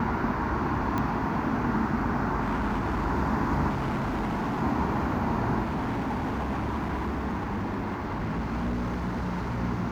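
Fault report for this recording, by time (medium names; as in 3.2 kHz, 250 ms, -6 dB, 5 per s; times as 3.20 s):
0.98 s: pop -16 dBFS
2.41–3.06 s: clipped -23.5 dBFS
3.69–4.63 s: clipped -25.5 dBFS
5.63–9.61 s: clipped -26 dBFS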